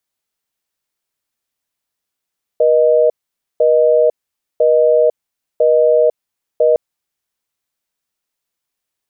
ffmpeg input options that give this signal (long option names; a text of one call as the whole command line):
ffmpeg -f lavfi -i "aevalsrc='0.282*(sin(2*PI*480*t)+sin(2*PI*620*t))*clip(min(mod(t,1),0.5-mod(t,1))/0.005,0,1)':duration=4.16:sample_rate=44100" out.wav